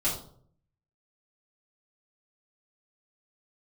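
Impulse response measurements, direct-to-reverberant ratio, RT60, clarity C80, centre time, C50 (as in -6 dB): -9.5 dB, 0.60 s, 10.0 dB, 31 ms, 6.0 dB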